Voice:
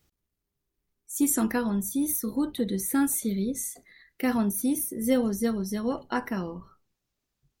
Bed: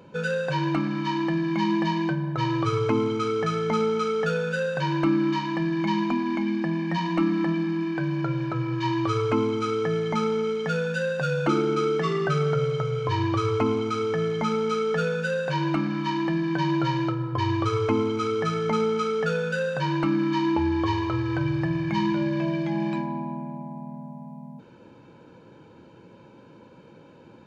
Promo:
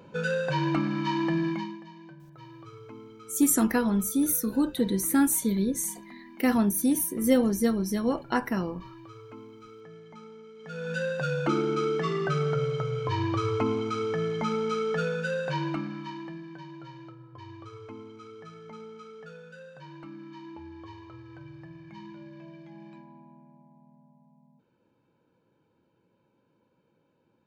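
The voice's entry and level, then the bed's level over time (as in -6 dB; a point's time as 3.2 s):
2.20 s, +2.0 dB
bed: 1.48 s -1.5 dB
1.83 s -22.5 dB
10.53 s -22.5 dB
10.93 s -3.5 dB
15.53 s -3.5 dB
16.7 s -20.5 dB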